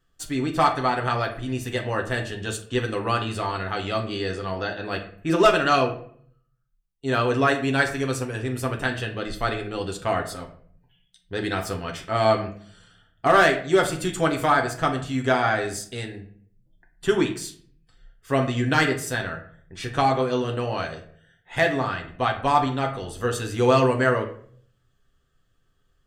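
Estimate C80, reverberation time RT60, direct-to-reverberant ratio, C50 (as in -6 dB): 13.5 dB, 0.55 s, 1.5 dB, 10.0 dB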